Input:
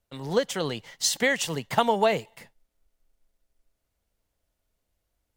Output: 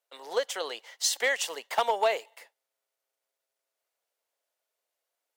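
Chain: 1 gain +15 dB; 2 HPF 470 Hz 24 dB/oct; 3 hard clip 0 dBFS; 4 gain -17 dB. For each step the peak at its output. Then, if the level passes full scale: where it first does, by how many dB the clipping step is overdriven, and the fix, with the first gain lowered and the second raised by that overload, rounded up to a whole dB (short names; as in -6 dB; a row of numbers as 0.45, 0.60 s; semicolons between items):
+8.0, +6.5, 0.0, -17.0 dBFS; step 1, 6.5 dB; step 1 +8 dB, step 4 -10 dB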